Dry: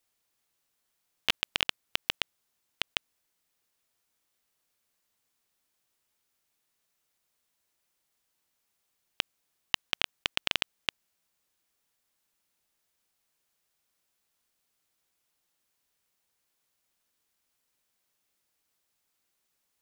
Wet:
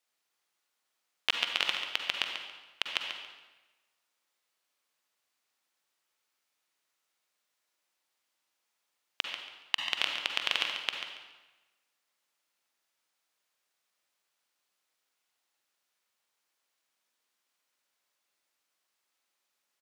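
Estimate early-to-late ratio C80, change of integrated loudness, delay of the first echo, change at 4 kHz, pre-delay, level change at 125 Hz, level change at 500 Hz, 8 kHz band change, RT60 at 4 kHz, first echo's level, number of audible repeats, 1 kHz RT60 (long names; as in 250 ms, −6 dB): 4.0 dB, 0.0 dB, 140 ms, +0.5 dB, 40 ms, below −10 dB, −1.5 dB, −2.0 dB, 0.95 s, −9.0 dB, 1, 1.1 s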